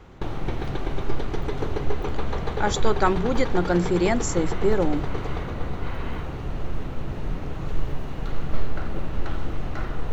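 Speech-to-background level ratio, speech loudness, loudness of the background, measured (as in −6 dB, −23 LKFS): 7.0 dB, −24.5 LKFS, −31.5 LKFS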